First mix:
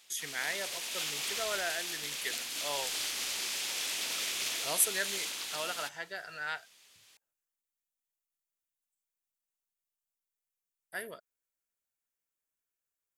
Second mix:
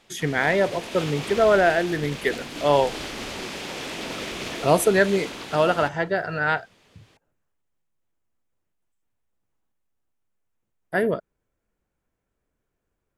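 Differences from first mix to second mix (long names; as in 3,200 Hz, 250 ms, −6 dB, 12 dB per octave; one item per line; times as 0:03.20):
background −6.5 dB
master: remove first-order pre-emphasis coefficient 0.97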